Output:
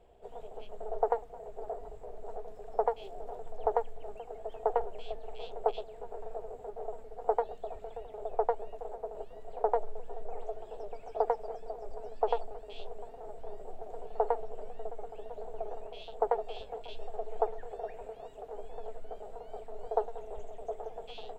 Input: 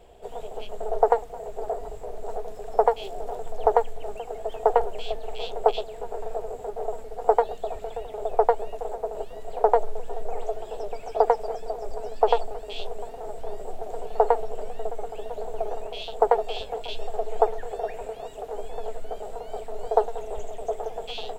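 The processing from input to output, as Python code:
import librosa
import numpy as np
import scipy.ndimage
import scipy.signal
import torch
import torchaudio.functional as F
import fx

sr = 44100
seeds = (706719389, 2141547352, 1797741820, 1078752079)

y = fx.high_shelf(x, sr, hz=3000.0, db=-9.0)
y = y * 10.0 ** (-9.0 / 20.0)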